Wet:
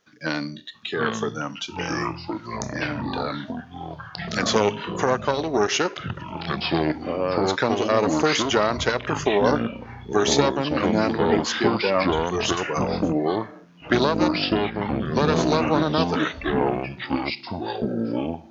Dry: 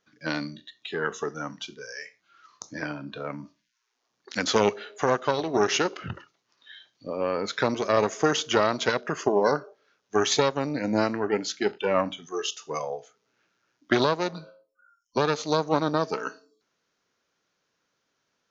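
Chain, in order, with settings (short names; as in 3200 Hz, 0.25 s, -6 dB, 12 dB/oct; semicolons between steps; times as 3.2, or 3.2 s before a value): in parallel at +2 dB: compressor, threshold -35 dBFS, peak gain reduction 17 dB; on the sum: echoes that change speed 0.656 s, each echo -5 st, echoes 3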